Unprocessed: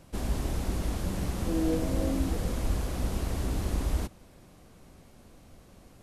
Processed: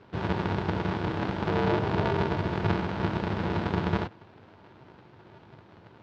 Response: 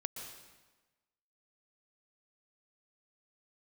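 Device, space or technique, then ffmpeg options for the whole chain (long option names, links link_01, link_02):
ring modulator pedal into a guitar cabinet: -af "aeval=exprs='val(0)*sgn(sin(2*PI*130*n/s))':channel_layout=same,highpass=100,equalizer=frequency=100:width_type=q:width=4:gain=8,equalizer=frequency=360:width_type=q:width=4:gain=4,equalizer=frequency=920:width_type=q:width=4:gain=7,equalizer=frequency=1500:width_type=q:width=4:gain=5,lowpass=frequency=4000:width=0.5412,lowpass=frequency=4000:width=1.3066"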